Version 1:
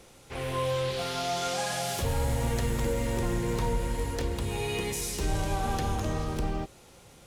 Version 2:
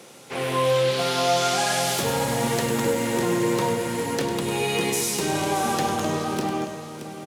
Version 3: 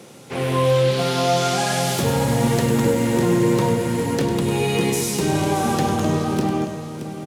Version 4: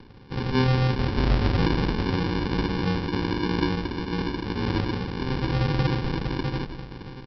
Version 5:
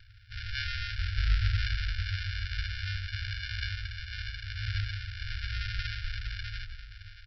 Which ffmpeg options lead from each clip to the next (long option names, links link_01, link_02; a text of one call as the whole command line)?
ffmpeg -i in.wav -filter_complex "[0:a]highpass=frequency=150:width=0.5412,highpass=frequency=150:width=1.3066,asplit=2[link_01][link_02];[link_02]aecho=0:1:100|625:0.335|0.299[link_03];[link_01][link_03]amix=inputs=2:normalize=0,volume=8dB" out.wav
ffmpeg -i in.wav -af "lowshelf=frequency=300:gain=11.5" out.wav
ffmpeg -i in.wav -af "highpass=720,aresample=11025,acrusher=samples=17:mix=1:aa=0.000001,aresample=44100,volume=2.5dB" out.wav
ffmpeg -i in.wav -af "afftfilt=real='re*(1-between(b*sr/4096,110,1300))':imag='im*(1-between(b*sr/4096,110,1300))':win_size=4096:overlap=0.75,volume=-3dB" out.wav